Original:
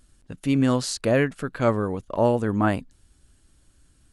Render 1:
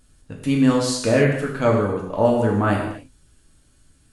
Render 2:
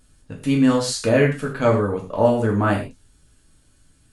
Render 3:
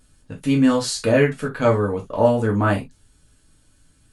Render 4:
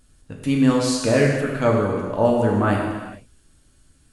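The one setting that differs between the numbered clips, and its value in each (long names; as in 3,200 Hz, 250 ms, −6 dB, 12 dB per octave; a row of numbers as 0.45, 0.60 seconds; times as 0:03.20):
reverb whose tail is shaped and stops, gate: 300, 150, 90, 480 milliseconds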